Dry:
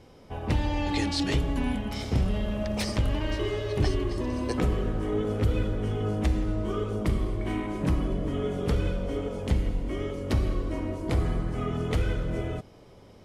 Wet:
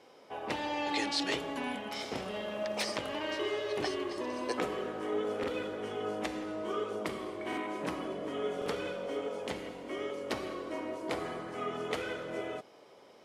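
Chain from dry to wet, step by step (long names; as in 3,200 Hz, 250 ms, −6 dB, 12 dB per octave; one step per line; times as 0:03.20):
high-pass filter 440 Hz 12 dB per octave
high-shelf EQ 7,100 Hz −5.5 dB
buffer that repeats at 0:05.39/0:07.48/0:08.57, samples 2,048, times 1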